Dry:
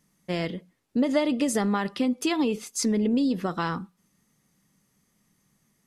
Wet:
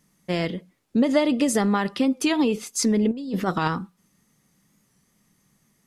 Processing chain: 3.11–3.68 negative-ratio compressor -28 dBFS, ratio -0.5; record warp 45 rpm, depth 100 cents; gain +3.5 dB

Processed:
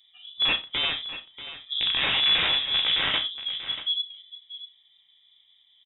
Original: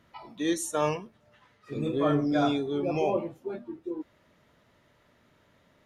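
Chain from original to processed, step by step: Wiener smoothing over 41 samples; HPF 150 Hz 12 dB/oct; notch 970 Hz, Q 7.5; in parallel at +1 dB: compressor 4:1, threshold -37 dBFS, peak gain reduction 13.5 dB; on the sum: wrapped overs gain 20 dB; doubler 34 ms -11.5 dB; on a send: echo 0.637 s -13 dB; on the sum: non-linear reverb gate 0.11 s falling, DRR 5 dB; inverted band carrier 3700 Hz

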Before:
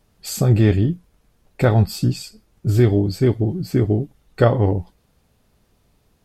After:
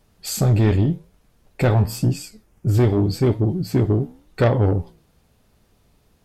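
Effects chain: 1.74–2.74 bell 4000 Hz -11 dB 0.47 oct; soft clip -12 dBFS, distortion -13 dB; flange 0.89 Hz, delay 7.8 ms, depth 9.3 ms, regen -83%; gain +6 dB

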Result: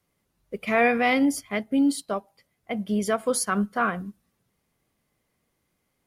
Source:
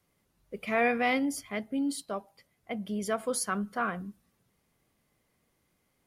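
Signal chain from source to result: in parallel at +3 dB: limiter -25.5 dBFS, peak gain reduction 10 dB; on the sum: upward expander 1.5:1, over -42 dBFS; gain +2.5 dB

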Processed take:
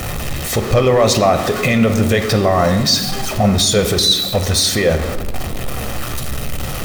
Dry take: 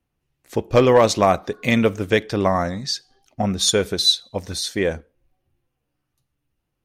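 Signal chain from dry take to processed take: zero-crossing step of -27.5 dBFS; limiter -16 dBFS, peak gain reduction 11 dB; reverb RT60 1.4 s, pre-delay 5 ms, DRR 8 dB; gain +9 dB

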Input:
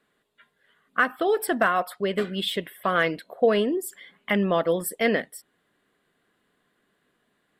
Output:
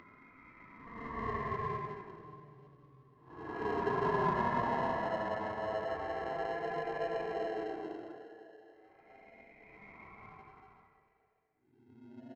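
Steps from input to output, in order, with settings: differentiator; comb 1.8 ms, depth 65%; Paulstretch 13×, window 0.05 s, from 1.44; downsampling 8000 Hz; in parallel at -6 dB: sample-and-hold 23×; on the sum: air absorption 83 m; outdoor echo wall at 62 m, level -19 dB; wide varispeed 0.615×

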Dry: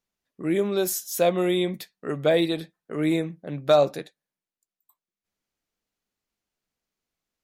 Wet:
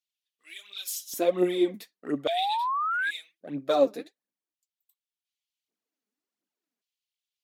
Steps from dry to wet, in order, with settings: phaser 1.4 Hz, delay 5 ms, feedback 63%; LFO high-pass square 0.44 Hz 270–3100 Hz; painted sound rise, 2.28–3.11, 650–1700 Hz -19 dBFS; gain -8.5 dB

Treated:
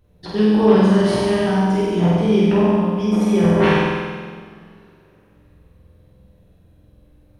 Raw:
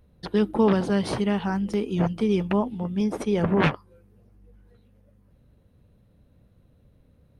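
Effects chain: flutter echo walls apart 8.1 m, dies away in 1.4 s; two-slope reverb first 0.92 s, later 3.5 s, from -22 dB, DRR -3.5 dB; gain -2 dB

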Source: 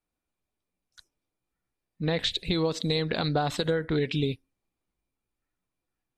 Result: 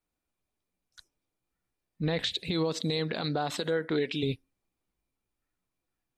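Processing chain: 2.21–4.22 HPF 91 Hz -> 270 Hz 12 dB/oct; limiter -19.5 dBFS, peak gain reduction 7 dB

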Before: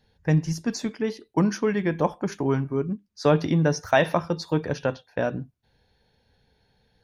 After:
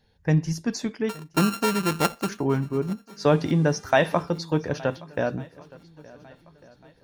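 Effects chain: 1.09–2.29 sample sorter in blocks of 32 samples; 3.26–4.22 buzz 400 Hz, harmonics 27, -54 dBFS -4 dB/oct; swung echo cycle 1.449 s, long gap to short 1.5:1, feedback 32%, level -22 dB

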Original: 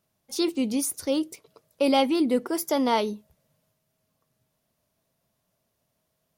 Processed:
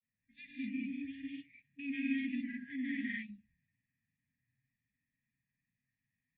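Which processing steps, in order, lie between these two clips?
FFT band-reject 280–1600 Hz; vocal tract filter e; bell 440 Hz -3 dB 1.4 oct; non-linear reverb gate 0.25 s rising, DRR -3.5 dB; grains, spray 28 ms, pitch spread up and down by 0 st; gain +6 dB

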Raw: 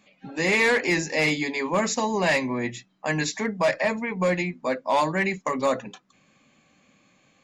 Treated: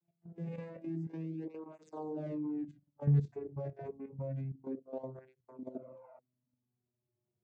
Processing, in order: vocoder on a gliding note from E3, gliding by -5 st; Doppler pass-by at 2.43, 12 m/s, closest 13 m; notches 60/120/180/240 Hz; spectral repair 5.71–6.16, 510–2800 Hz before; EQ curve 290 Hz 0 dB, 500 Hz -2 dB, 1800 Hz -20 dB; level quantiser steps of 12 dB; notch 490 Hz, Q 12; tape flanging out of phase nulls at 0.28 Hz, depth 4.2 ms

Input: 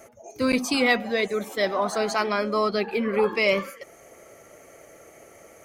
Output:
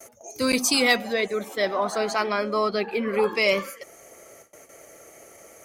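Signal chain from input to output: tone controls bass -3 dB, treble +11 dB, from 1.12 s treble -1 dB, from 3.06 s treble +6 dB; gate with hold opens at -38 dBFS

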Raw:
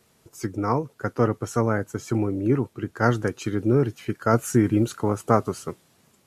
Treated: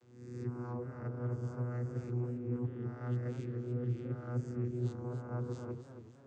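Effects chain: spectral swells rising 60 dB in 0.61 s; reverse; compressor 8:1, threshold -34 dBFS, peak gain reduction 22 dB; reverse; vocoder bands 16, saw 122 Hz; warbling echo 0.279 s, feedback 41%, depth 151 cents, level -10 dB; gain +1 dB

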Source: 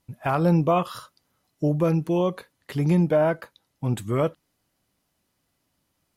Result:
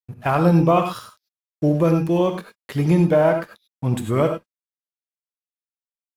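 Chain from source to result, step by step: crossover distortion -49 dBFS; non-linear reverb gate 0.12 s rising, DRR 5.5 dB; gain +4 dB

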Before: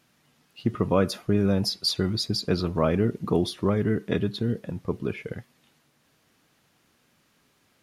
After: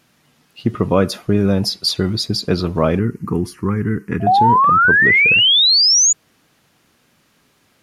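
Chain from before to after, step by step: 4.2–6.13 painted sound rise 650–7000 Hz -19 dBFS; 2.99–4.27 fixed phaser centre 1500 Hz, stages 4; gain +7 dB

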